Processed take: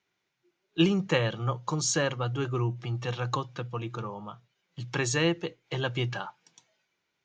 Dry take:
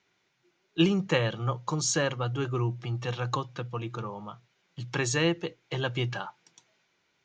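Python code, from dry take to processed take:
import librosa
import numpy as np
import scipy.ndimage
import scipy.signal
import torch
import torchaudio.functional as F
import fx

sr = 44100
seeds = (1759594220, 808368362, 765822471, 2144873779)

y = fx.noise_reduce_blind(x, sr, reduce_db=7)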